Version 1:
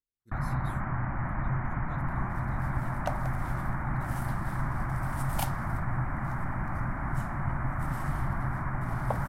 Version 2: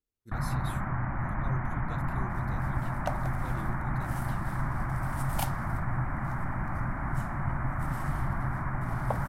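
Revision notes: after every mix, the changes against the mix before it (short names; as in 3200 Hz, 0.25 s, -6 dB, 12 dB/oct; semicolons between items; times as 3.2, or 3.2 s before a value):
speech +8.5 dB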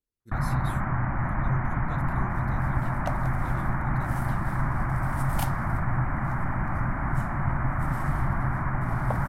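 first sound +4.5 dB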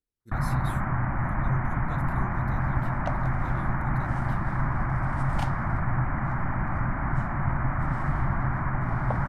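second sound: add air absorption 98 m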